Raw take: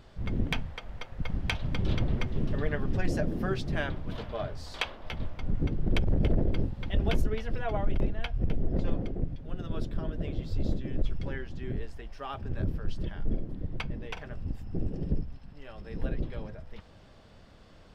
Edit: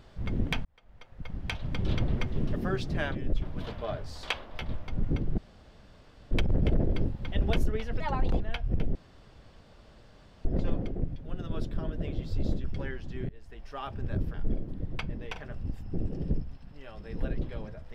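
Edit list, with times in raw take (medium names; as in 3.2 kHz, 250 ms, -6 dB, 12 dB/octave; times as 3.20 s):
0.65–1.97 s: fade in
2.56–3.34 s: delete
5.89 s: insert room tone 0.93 s
7.58–8.10 s: speed 130%
8.65 s: insert room tone 1.50 s
10.84–11.11 s: move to 3.93 s
11.76–12.18 s: fade in, from -23 dB
12.81–13.15 s: delete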